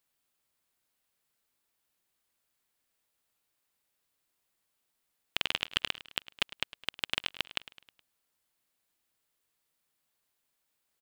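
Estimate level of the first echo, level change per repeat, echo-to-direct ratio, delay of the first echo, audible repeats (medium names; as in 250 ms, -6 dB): -17.0 dB, -6.0 dB, -15.5 dB, 105 ms, 4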